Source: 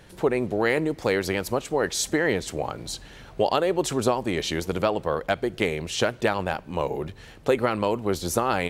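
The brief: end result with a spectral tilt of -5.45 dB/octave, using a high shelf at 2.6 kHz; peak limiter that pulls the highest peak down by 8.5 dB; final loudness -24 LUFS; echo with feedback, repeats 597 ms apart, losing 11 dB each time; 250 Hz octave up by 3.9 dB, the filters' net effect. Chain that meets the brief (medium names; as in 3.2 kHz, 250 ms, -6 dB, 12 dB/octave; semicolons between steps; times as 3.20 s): peaking EQ 250 Hz +5.5 dB; treble shelf 2.6 kHz -8.5 dB; peak limiter -14.5 dBFS; feedback delay 597 ms, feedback 28%, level -11 dB; trim +3 dB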